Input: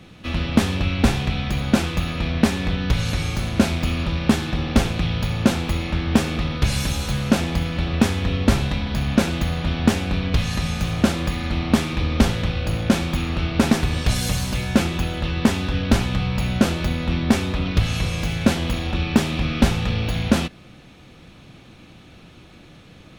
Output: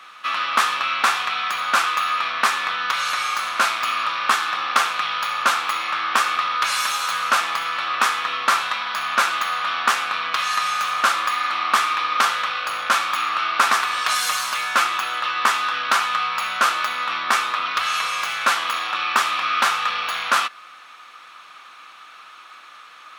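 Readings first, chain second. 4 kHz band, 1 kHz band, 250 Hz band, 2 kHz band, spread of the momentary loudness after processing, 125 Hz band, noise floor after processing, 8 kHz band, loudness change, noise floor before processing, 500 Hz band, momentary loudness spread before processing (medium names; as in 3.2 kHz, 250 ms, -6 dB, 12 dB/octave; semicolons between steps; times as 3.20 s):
+4.5 dB, +12.0 dB, -24.0 dB, +8.5 dB, 4 LU, under -30 dB, -44 dBFS, +3.5 dB, +1.5 dB, -46 dBFS, -9.0 dB, 4 LU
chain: resonant high-pass 1.2 kHz, resonance Q 5.2; trim +3.5 dB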